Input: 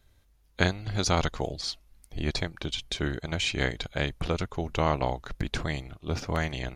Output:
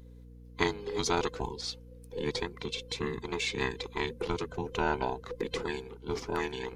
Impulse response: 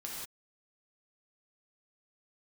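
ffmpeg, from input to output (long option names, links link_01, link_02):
-af "afftfilt=real='real(if(between(b,1,1008),(2*floor((b-1)/24)+1)*24-b,b),0)':imag='imag(if(between(b,1,1008),(2*floor((b-1)/24)+1)*24-b,b),0)*if(between(b,1,1008),-1,1)':win_size=2048:overlap=0.75,bandreject=frequency=78.04:width_type=h:width=4,bandreject=frequency=156.08:width_type=h:width=4,bandreject=frequency=234.12:width_type=h:width=4,aeval=exprs='val(0)+0.00562*(sin(2*PI*60*n/s)+sin(2*PI*2*60*n/s)/2+sin(2*PI*3*60*n/s)/3+sin(2*PI*4*60*n/s)/4+sin(2*PI*5*60*n/s)/5)':channel_layout=same,volume=-4dB"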